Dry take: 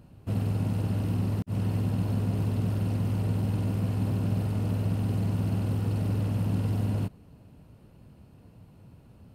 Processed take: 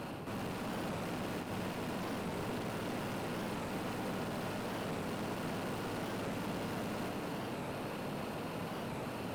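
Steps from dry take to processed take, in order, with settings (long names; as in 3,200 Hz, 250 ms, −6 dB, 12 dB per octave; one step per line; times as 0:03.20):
high-pass filter 190 Hz 6 dB per octave
high-shelf EQ 9,200 Hz +6.5 dB
reversed playback
downward compressor, threshold −42 dBFS, peak gain reduction 13.5 dB
reversed playback
mid-hump overdrive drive 38 dB, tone 2,200 Hz, clips at −31.5 dBFS
on a send: echo with a time of its own for lows and highs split 390 Hz, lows 90 ms, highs 290 ms, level −4 dB
on the sum: wow of a warped record 45 rpm, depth 160 cents
level −1.5 dB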